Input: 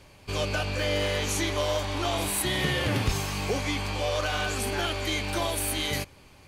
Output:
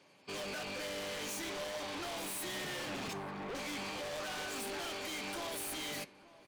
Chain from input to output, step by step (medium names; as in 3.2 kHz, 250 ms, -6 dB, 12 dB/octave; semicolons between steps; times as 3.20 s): 3.13–3.55 s: median filter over 15 samples; spectral gate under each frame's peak -30 dB strong; high-pass 170 Hz 24 dB/octave; saturation -32.5 dBFS, distortion -8 dB; flange 0.69 Hz, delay 9 ms, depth 8.1 ms, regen -84%; wavefolder -39.5 dBFS; echo from a far wall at 150 m, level -12 dB; upward expansion 1.5:1, over -55 dBFS; trim +2.5 dB